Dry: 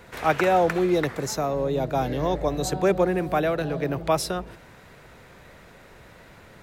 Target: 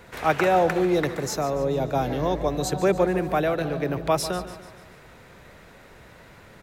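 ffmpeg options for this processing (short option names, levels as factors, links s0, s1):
-af "aecho=1:1:145|290|435|580|725:0.211|0.106|0.0528|0.0264|0.0132"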